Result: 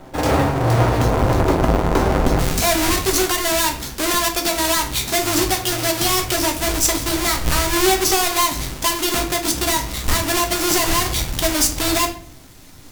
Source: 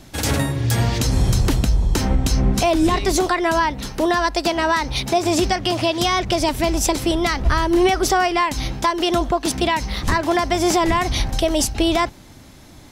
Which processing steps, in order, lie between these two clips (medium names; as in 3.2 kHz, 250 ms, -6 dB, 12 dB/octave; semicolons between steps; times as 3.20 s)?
square wave that keeps the level; peaking EQ 720 Hz +12.5 dB 2.8 oct, from 2.39 s 14 kHz; simulated room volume 48 m³, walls mixed, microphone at 0.49 m; trim -10 dB